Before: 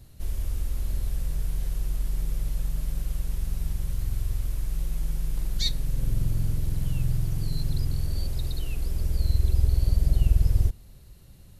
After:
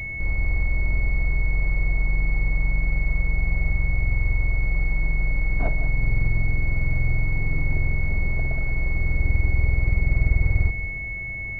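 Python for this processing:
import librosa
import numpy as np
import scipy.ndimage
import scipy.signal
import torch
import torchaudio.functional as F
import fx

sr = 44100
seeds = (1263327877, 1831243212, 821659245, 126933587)

y = fx.bin_compress(x, sr, power=0.6)
y = y + 10.0 ** (-12.5 / 20.0) * np.pad(y, (int(183 * sr / 1000.0), 0))[:len(y)]
y = fx.pwm(y, sr, carrier_hz=2200.0)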